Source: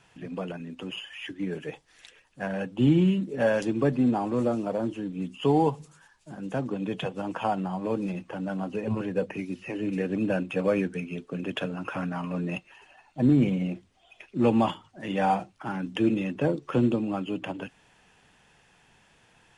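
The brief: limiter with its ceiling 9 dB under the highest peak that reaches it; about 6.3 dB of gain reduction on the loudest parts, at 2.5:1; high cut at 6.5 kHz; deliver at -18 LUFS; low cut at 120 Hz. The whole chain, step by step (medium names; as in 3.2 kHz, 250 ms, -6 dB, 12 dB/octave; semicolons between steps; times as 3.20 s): high-pass 120 Hz; low-pass 6.5 kHz; compression 2.5:1, threshold -27 dBFS; trim +16.5 dB; peak limiter -8 dBFS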